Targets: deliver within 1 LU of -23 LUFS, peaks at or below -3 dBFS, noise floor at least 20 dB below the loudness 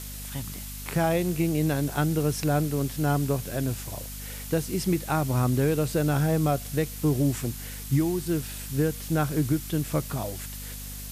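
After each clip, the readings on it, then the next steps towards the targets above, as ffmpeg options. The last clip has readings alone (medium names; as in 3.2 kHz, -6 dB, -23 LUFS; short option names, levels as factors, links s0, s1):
hum 50 Hz; highest harmonic 250 Hz; hum level -38 dBFS; noise floor -38 dBFS; noise floor target -47 dBFS; loudness -27.0 LUFS; peak level -12.0 dBFS; loudness target -23.0 LUFS
-> -af "bandreject=f=50:t=h:w=4,bandreject=f=100:t=h:w=4,bandreject=f=150:t=h:w=4,bandreject=f=200:t=h:w=4,bandreject=f=250:t=h:w=4"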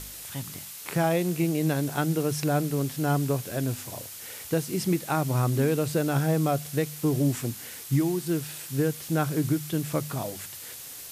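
hum not found; noise floor -41 dBFS; noise floor target -48 dBFS
-> -af "afftdn=nr=7:nf=-41"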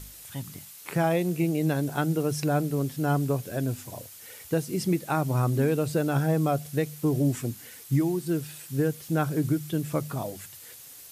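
noise floor -47 dBFS; noise floor target -48 dBFS
-> -af "afftdn=nr=6:nf=-47"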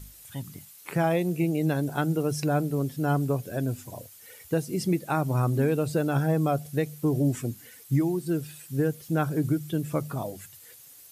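noise floor -50 dBFS; loudness -27.5 LUFS; peak level -12.5 dBFS; loudness target -23.0 LUFS
-> -af "volume=1.68"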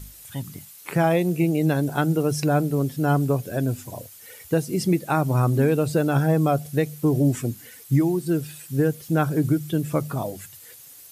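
loudness -23.0 LUFS; peak level -8.0 dBFS; noise floor -46 dBFS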